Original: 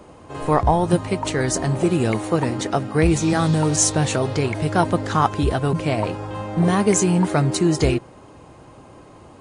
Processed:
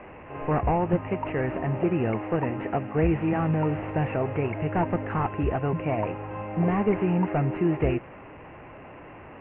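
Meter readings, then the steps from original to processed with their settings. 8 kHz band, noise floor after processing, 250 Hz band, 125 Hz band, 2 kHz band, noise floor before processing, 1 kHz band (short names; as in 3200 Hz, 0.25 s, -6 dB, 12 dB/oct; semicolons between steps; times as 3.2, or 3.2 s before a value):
under -40 dB, -45 dBFS, -6.0 dB, -6.0 dB, -7.0 dB, -45 dBFS, -6.5 dB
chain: delta modulation 32 kbps, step -33 dBFS; rippled Chebyshev low-pass 2800 Hz, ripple 3 dB; gain -3.5 dB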